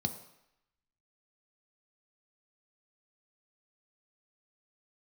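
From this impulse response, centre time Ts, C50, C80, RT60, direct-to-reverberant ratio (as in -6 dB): 11 ms, 11.5 dB, 13.5 dB, 0.80 s, 6.5 dB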